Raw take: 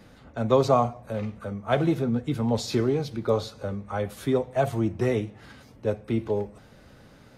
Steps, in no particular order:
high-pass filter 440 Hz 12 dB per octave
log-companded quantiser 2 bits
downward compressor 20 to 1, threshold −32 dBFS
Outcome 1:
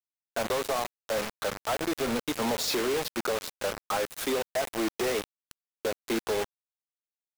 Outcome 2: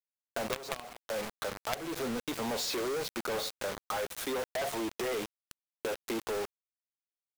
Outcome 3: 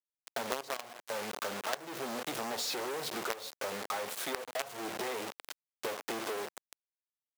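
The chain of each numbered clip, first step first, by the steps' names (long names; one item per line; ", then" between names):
high-pass filter, then downward compressor, then log-companded quantiser
high-pass filter, then log-companded quantiser, then downward compressor
log-companded quantiser, then high-pass filter, then downward compressor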